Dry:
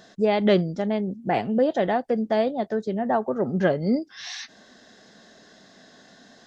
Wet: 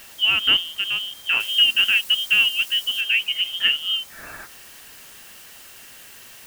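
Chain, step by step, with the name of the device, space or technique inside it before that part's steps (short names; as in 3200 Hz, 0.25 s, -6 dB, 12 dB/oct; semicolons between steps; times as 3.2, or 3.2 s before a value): scrambled radio voice (BPF 330–2900 Hz; inverted band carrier 3400 Hz; white noise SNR 20 dB); 1.4–3.01 high shelf 4000 Hz +7.5 dB; gain +3 dB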